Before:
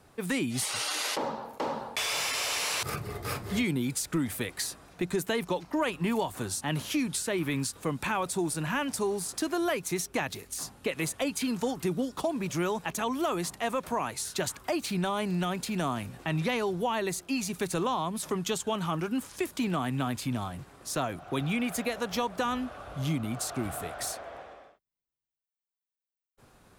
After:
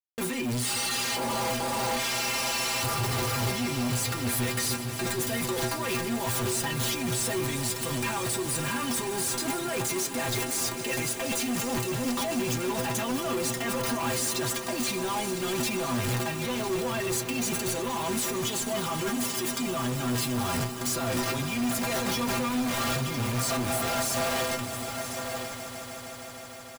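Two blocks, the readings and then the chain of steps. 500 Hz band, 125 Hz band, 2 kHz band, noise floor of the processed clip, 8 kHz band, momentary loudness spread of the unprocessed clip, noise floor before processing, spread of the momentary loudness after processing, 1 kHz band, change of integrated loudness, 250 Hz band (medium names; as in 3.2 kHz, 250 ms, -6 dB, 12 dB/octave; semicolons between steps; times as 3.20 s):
+1.5 dB, +3.0 dB, +3.0 dB, -38 dBFS, +5.5 dB, 6 LU, under -85 dBFS, 3 LU, +2.0 dB, +3.0 dB, +0.5 dB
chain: bit crusher 7-bit; compressor with a negative ratio -40 dBFS, ratio -1; peak limiter -30 dBFS, peak gain reduction 11 dB; inharmonic resonator 120 Hz, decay 0.26 s, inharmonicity 0.008; delay 1005 ms -16 dB; waveshaping leveller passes 5; on a send: echo with a slow build-up 155 ms, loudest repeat 5, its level -16 dB; on the sum: trim +8 dB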